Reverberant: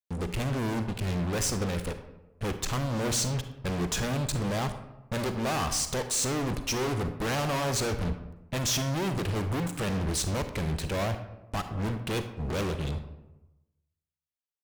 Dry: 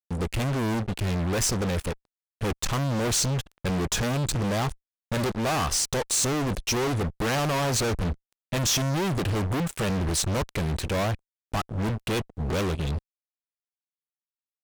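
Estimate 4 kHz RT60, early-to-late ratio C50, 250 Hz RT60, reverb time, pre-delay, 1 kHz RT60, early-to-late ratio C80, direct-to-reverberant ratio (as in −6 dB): 0.55 s, 9.5 dB, 1.0 s, 1.0 s, 37 ms, 1.0 s, 12.0 dB, 8.5 dB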